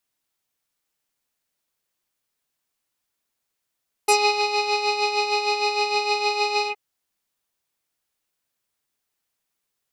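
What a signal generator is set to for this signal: synth patch with tremolo G#5, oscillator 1 square, interval +19 st, oscillator 2 level -2 dB, sub -2 dB, noise -11.5 dB, filter lowpass, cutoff 2.1 kHz, Q 2.5, filter envelope 2.5 oct, filter decay 0.09 s, attack 7.2 ms, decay 0.31 s, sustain -6 dB, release 0.08 s, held 2.59 s, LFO 6.5 Hz, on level 7 dB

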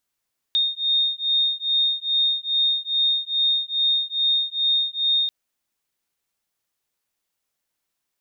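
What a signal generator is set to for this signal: beating tones 3.68 kHz, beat 2.4 Hz, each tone -22 dBFS 4.74 s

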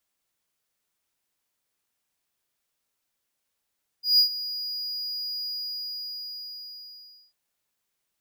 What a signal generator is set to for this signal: ADSR triangle 4.89 kHz, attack 157 ms, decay 98 ms, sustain -15.5 dB, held 1.43 s, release 1870 ms -12 dBFS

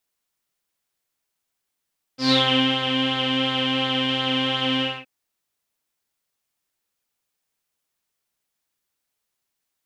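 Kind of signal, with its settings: synth patch with pulse-width modulation C4, oscillator 2 saw, sub -12 dB, noise -10 dB, filter lowpass, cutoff 2.6 kHz, Q 11, filter envelope 1 oct, filter sustain 25%, attack 127 ms, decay 0.46 s, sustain -6 dB, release 0.24 s, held 2.63 s, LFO 2.8 Hz, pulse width 25%, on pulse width 16%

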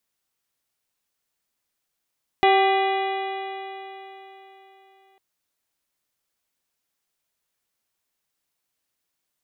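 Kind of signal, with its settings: stretched partials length 2.75 s, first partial 385 Hz, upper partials 3/-9.5/-17.5/-5.5/-10/-13/-12/-20 dB, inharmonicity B 0.0032, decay 3.74 s, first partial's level -18 dB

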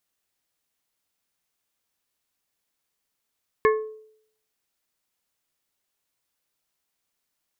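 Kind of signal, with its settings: glass hit plate, lowest mode 434 Hz, modes 4, decay 0.66 s, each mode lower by 4 dB, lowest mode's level -14 dB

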